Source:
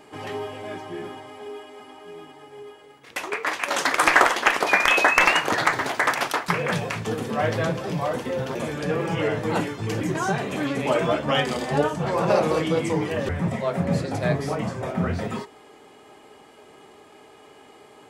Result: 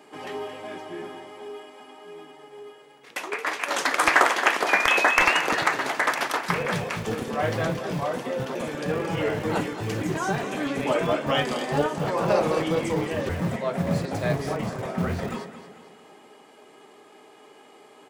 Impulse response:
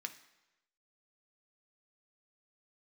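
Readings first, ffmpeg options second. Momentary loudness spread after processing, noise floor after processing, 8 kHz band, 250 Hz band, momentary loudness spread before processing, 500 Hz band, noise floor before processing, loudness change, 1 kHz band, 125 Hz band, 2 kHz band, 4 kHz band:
18 LU, -52 dBFS, -1.5 dB, -2.0 dB, 18 LU, -1.5 dB, -50 dBFS, -1.5 dB, -1.5 dB, -2.5 dB, -1.5 dB, -1.5 dB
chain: -filter_complex "[0:a]acrossover=split=140[s0][s1];[s0]acrusher=bits=5:mix=0:aa=0.000001[s2];[s1]aecho=1:1:224|448|672|896|1120:0.266|0.122|0.0563|0.0259|0.0119[s3];[s2][s3]amix=inputs=2:normalize=0,volume=0.794"

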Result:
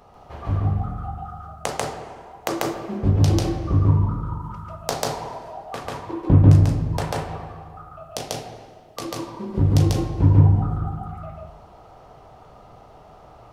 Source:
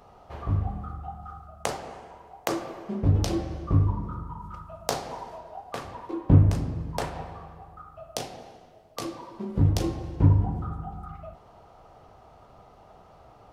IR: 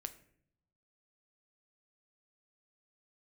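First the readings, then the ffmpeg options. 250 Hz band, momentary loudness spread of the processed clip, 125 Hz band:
+5.5 dB, 21 LU, +6.5 dB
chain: -filter_complex "[0:a]asplit=2[s0][s1];[1:a]atrim=start_sample=2205,adelay=142[s2];[s1][s2]afir=irnorm=-1:irlink=0,volume=1.58[s3];[s0][s3]amix=inputs=2:normalize=0,volume=1.26"

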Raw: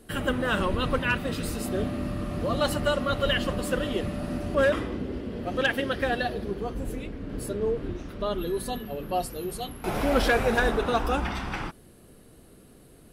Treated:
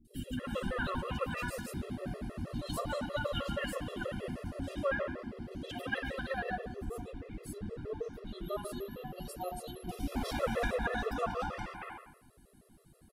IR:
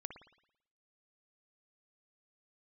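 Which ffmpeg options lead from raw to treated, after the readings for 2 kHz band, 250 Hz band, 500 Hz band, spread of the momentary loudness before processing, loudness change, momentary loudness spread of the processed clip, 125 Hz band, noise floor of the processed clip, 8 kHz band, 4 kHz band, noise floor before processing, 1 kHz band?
-10.0 dB, -10.0 dB, -10.5 dB, 10 LU, -10.0 dB, 10 LU, -9.0 dB, -62 dBFS, -10.0 dB, -11.5 dB, -53 dBFS, -9.0 dB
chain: -filter_complex "[0:a]acrossover=split=370|2800[s0][s1][s2];[s2]adelay=50[s3];[s1]adelay=280[s4];[s0][s4][s3]amix=inputs=3:normalize=0[s5];[1:a]atrim=start_sample=2205[s6];[s5][s6]afir=irnorm=-1:irlink=0,afftfilt=real='re*gt(sin(2*PI*6.3*pts/sr)*(1-2*mod(floor(b*sr/1024/350),2)),0)':imag='im*gt(sin(2*PI*6.3*pts/sr)*(1-2*mod(floor(b*sr/1024/350),2)),0)':win_size=1024:overlap=0.75,volume=0.841"

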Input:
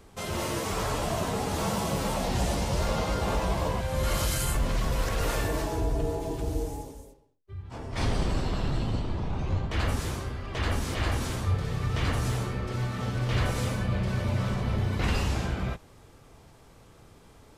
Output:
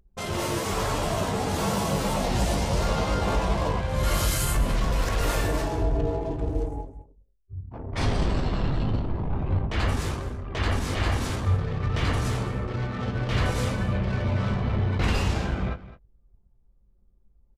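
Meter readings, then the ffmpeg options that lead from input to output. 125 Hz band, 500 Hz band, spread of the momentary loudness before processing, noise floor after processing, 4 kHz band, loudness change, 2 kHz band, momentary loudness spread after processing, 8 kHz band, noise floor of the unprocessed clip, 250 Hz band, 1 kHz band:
+2.5 dB, +2.5 dB, 6 LU, -61 dBFS, +2.0 dB, +3.0 dB, +2.5 dB, 5 LU, +2.0 dB, -54 dBFS, +3.0 dB, +3.0 dB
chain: -filter_complex "[0:a]anlmdn=1.58,asplit=2[s0][s1];[s1]adelay=20,volume=0.282[s2];[s0][s2]amix=inputs=2:normalize=0,asplit=2[s3][s4];[s4]aecho=0:1:211:0.158[s5];[s3][s5]amix=inputs=2:normalize=0,volume=1.33"

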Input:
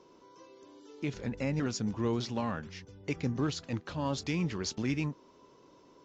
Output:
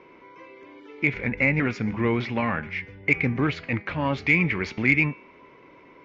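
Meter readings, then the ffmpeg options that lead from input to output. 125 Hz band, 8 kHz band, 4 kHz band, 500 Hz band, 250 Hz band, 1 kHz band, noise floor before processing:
+7.0 dB, no reading, +1.5 dB, +7.0 dB, +7.0 dB, +9.0 dB, -60 dBFS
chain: -af "lowpass=f=2200:t=q:w=8.6,bandreject=f=205.9:t=h:w=4,bandreject=f=411.8:t=h:w=4,bandreject=f=617.7:t=h:w=4,bandreject=f=823.6:t=h:w=4,bandreject=f=1029.5:t=h:w=4,bandreject=f=1235.4:t=h:w=4,bandreject=f=1441.3:t=h:w=4,bandreject=f=1647.2:t=h:w=4,bandreject=f=1853.1:t=h:w=4,bandreject=f=2059:t=h:w=4,bandreject=f=2264.9:t=h:w=4,bandreject=f=2470.8:t=h:w=4,bandreject=f=2676.7:t=h:w=4,bandreject=f=2882.6:t=h:w=4,bandreject=f=3088.5:t=h:w=4,bandreject=f=3294.4:t=h:w=4,bandreject=f=3500.3:t=h:w=4,bandreject=f=3706.2:t=h:w=4,bandreject=f=3912.1:t=h:w=4,bandreject=f=4118:t=h:w=4,bandreject=f=4323.9:t=h:w=4,bandreject=f=4529.8:t=h:w=4,bandreject=f=4735.7:t=h:w=4,bandreject=f=4941.6:t=h:w=4,bandreject=f=5147.5:t=h:w=4,bandreject=f=5353.4:t=h:w=4,bandreject=f=5559.3:t=h:w=4,bandreject=f=5765.2:t=h:w=4,bandreject=f=5971.1:t=h:w=4,bandreject=f=6177:t=h:w=4,bandreject=f=6382.9:t=h:w=4,bandreject=f=6588.8:t=h:w=4,bandreject=f=6794.7:t=h:w=4,acontrast=79"

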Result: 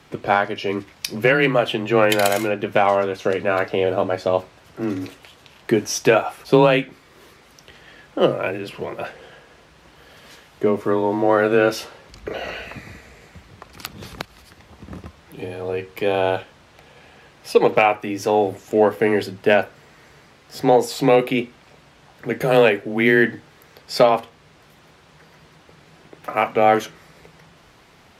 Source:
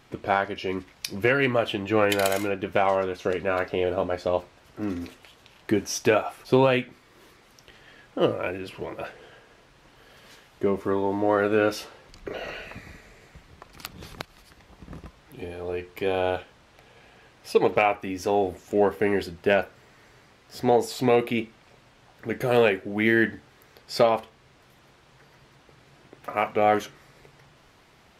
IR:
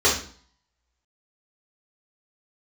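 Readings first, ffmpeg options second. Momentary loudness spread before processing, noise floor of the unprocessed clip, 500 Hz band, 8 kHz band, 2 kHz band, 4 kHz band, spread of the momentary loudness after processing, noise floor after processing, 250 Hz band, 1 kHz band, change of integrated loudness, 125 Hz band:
19 LU, -57 dBFS, +5.5 dB, +5.5 dB, +5.5 dB, +5.5 dB, 19 LU, -51 dBFS, +5.0 dB, +6.0 dB, +5.5 dB, +5.0 dB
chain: -af "afreqshift=21,volume=1.88"

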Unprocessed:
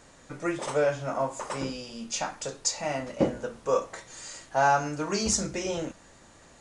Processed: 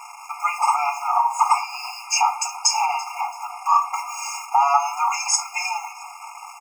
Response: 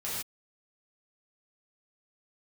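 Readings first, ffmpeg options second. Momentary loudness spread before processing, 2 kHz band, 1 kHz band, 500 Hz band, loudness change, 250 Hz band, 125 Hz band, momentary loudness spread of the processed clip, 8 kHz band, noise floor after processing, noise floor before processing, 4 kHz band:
13 LU, +5.5 dB, +12.0 dB, -9.5 dB, +7.5 dB, under -40 dB, under -40 dB, 12 LU, +8.0 dB, -40 dBFS, -55 dBFS, +8.0 dB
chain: -filter_complex "[0:a]equalizer=f=330:t=o:w=0.48:g=13,acrusher=bits=7:mix=0:aa=0.5,asuperstop=centerf=3600:order=20:qfactor=2.6,highshelf=f=2200:g=-11.5,afftfilt=real='re*lt(hypot(re,im),0.562)':imag='im*lt(hypot(re,im),0.562)':win_size=1024:overlap=0.75,acompressor=threshold=0.0224:ratio=2.5,highpass=f=130:w=0.5412,highpass=f=130:w=1.3066,aecho=1:1:3.3:0.62,asplit=2[s0][s1];[s1]asplit=3[s2][s3][s4];[s2]adelay=335,afreqshift=45,volume=0.1[s5];[s3]adelay=670,afreqshift=90,volume=0.0331[s6];[s4]adelay=1005,afreqshift=135,volume=0.0108[s7];[s5][s6][s7]amix=inputs=3:normalize=0[s8];[s0][s8]amix=inputs=2:normalize=0,alimiter=level_in=14.1:limit=0.891:release=50:level=0:latency=1,afftfilt=real='re*eq(mod(floor(b*sr/1024/700),2),1)':imag='im*eq(mod(floor(b*sr/1024/700),2),1)':win_size=1024:overlap=0.75"

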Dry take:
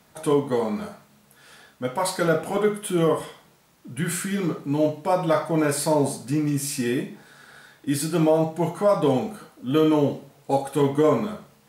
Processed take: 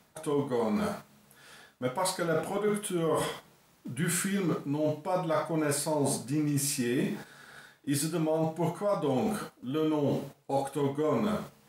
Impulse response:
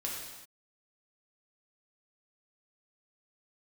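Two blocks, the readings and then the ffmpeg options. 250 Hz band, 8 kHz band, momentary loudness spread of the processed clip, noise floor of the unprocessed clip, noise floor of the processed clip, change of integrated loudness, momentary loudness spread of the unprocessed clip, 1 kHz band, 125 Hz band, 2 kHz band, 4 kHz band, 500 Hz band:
-6.5 dB, -2.5 dB, 7 LU, -58 dBFS, -63 dBFS, -7.0 dB, 12 LU, -6.5 dB, -6.0 dB, -5.0 dB, -4.5 dB, -7.5 dB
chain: -af "agate=range=0.355:threshold=0.00562:ratio=16:detection=peak,areverse,acompressor=threshold=0.0224:ratio=6,areverse,volume=2"

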